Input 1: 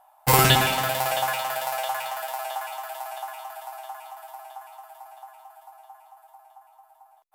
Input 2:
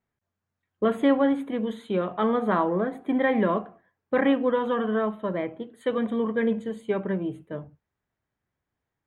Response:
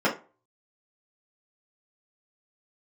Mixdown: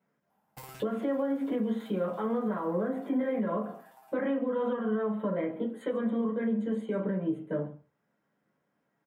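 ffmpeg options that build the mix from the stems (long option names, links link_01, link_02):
-filter_complex "[0:a]acompressor=threshold=-27dB:ratio=4,adelay=300,volume=-19dB[link_01];[1:a]highpass=frequency=82:width=0.5412,highpass=frequency=82:width=1.3066,acompressor=threshold=-30dB:ratio=2,alimiter=level_in=3.5dB:limit=-24dB:level=0:latency=1:release=131,volume=-3.5dB,volume=-4dB,asplit=4[link_02][link_03][link_04][link_05];[link_03]volume=-4.5dB[link_06];[link_04]volume=-11dB[link_07];[link_05]apad=whole_len=337120[link_08];[link_01][link_08]sidechaincompress=threshold=-47dB:ratio=8:attack=44:release=282[link_09];[2:a]atrim=start_sample=2205[link_10];[link_06][link_10]afir=irnorm=-1:irlink=0[link_11];[link_07]aecho=0:1:142:1[link_12];[link_09][link_02][link_11][link_12]amix=inputs=4:normalize=0,alimiter=limit=-21.5dB:level=0:latency=1:release=489"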